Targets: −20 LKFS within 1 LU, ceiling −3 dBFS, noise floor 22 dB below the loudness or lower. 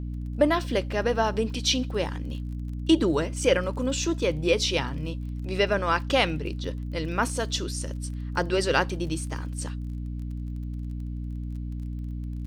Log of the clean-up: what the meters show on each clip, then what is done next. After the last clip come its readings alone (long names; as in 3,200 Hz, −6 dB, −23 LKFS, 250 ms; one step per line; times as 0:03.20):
crackle rate 27 per second; mains hum 60 Hz; hum harmonics up to 300 Hz; level of the hum −30 dBFS; integrated loudness −27.5 LKFS; sample peak −7.0 dBFS; target loudness −20.0 LKFS
→ click removal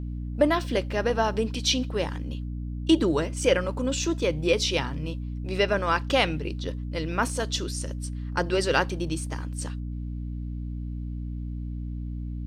crackle rate 0 per second; mains hum 60 Hz; hum harmonics up to 300 Hz; level of the hum −30 dBFS
→ mains-hum notches 60/120/180/240/300 Hz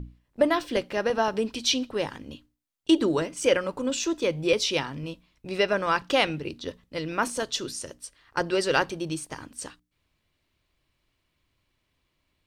mains hum none found; integrated loudness −26.5 LKFS; sample peak −8.0 dBFS; target loudness −20.0 LKFS
→ level +6.5 dB
brickwall limiter −3 dBFS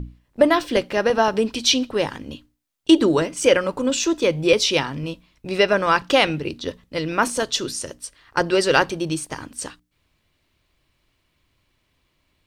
integrated loudness −20.5 LKFS; sample peak −3.0 dBFS; background noise floor −70 dBFS